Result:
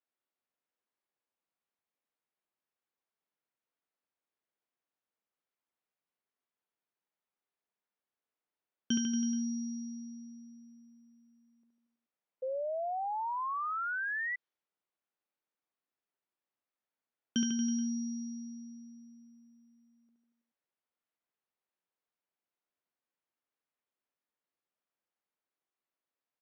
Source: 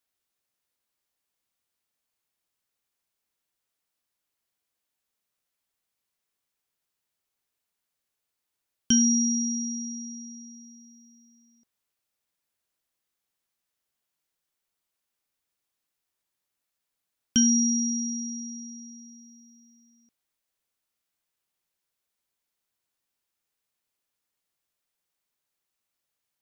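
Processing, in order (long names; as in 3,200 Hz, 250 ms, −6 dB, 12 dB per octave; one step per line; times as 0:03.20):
Bessel high-pass filter 250 Hz
high-frequency loss of the air 210 metres
reverse bouncing-ball delay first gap 70 ms, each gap 1.1×, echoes 5
sound drawn into the spectrogram rise, 0:12.42–0:14.36, 510–2,000 Hz −31 dBFS
one half of a high-frequency compander decoder only
level −4 dB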